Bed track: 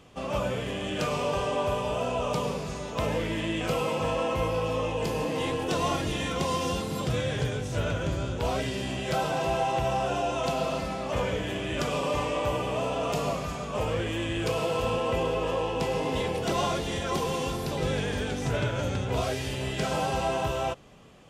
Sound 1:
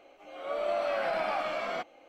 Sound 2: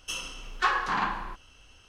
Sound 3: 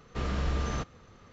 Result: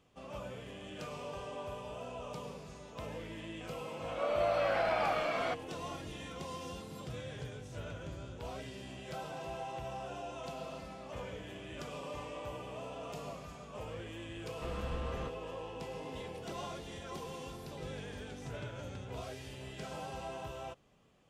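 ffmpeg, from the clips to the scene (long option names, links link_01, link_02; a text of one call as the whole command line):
ffmpeg -i bed.wav -i cue0.wav -i cue1.wav -i cue2.wav -filter_complex "[0:a]volume=-15dB[link_01];[3:a]lowpass=3600[link_02];[1:a]atrim=end=2.08,asetpts=PTS-STARTPTS,volume=-1dB,afade=type=in:duration=0.004:curve=hsin,afade=type=out:start_time=2.076:duration=0.004:curve=hsin,adelay=3720[link_03];[link_02]atrim=end=1.32,asetpts=PTS-STARTPTS,volume=-10dB,afade=type=in:duration=0.004:curve=hsin,afade=type=out:start_time=1.316:duration=0.004:curve=hsin,adelay=14460[link_04];[link_01][link_03][link_04]amix=inputs=3:normalize=0" out.wav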